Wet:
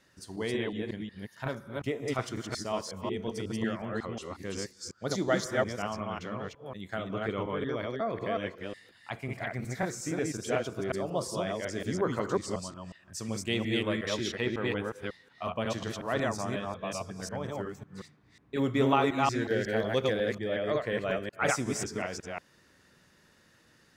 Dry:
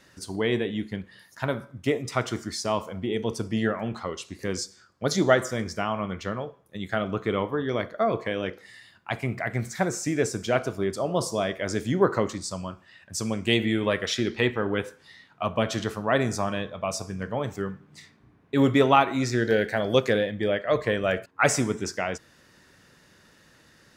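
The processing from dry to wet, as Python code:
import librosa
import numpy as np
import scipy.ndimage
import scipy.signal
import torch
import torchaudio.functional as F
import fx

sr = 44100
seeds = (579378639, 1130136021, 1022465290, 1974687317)

y = fx.reverse_delay(x, sr, ms=182, wet_db=-0.5)
y = y * librosa.db_to_amplitude(-8.5)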